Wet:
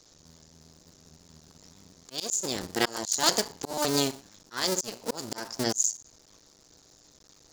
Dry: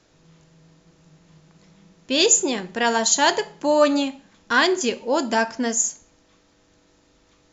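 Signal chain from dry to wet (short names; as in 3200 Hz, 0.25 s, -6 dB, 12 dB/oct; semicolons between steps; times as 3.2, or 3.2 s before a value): cycle switcher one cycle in 2, muted; resonant high shelf 3700 Hz +9.5 dB, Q 1.5; auto swell 0.425 s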